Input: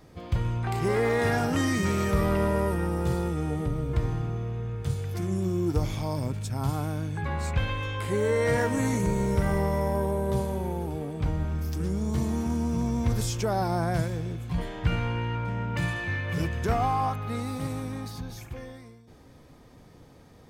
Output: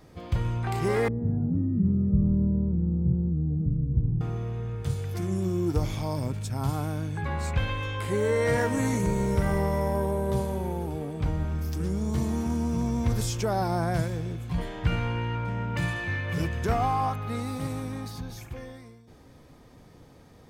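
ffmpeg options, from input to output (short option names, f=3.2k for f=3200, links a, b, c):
-filter_complex "[0:a]asettb=1/sr,asplit=3[a][b][c];[a]atrim=end=1.084[d];[b]atrim=start=1.08:end=4.21,asetpts=PTS-STARTPTS,afade=t=in:d=0.004:c=qsin,afade=t=out:st=3.126:d=0.004:c=qsin,lowpass=f=190:t=q:w=1.9[e];[c]atrim=start=4.206[f];[d][e]acrossfade=d=0.004:c1=hsin:c2=qsin[g];[g][f]acrossfade=d=0.004:c1=qsin:c2=hsin"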